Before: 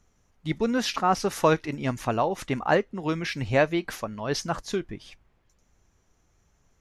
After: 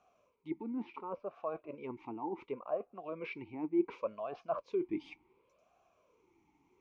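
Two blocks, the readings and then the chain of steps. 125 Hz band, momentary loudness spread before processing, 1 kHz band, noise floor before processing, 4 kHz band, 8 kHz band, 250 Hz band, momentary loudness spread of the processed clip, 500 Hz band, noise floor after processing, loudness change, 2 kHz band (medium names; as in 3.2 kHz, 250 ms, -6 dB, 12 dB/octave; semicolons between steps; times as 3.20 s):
-24.5 dB, 10 LU, -16.0 dB, -67 dBFS, -26.5 dB, under -35 dB, -9.5 dB, 10 LU, -11.5 dB, -74 dBFS, -13.0 dB, -21.0 dB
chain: low-pass that closes with the level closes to 1.1 kHz, closed at -22 dBFS; reverse; compression 10:1, threshold -37 dBFS, peak gain reduction 21 dB; reverse; talking filter a-u 0.69 Hz; trim +12.5 dB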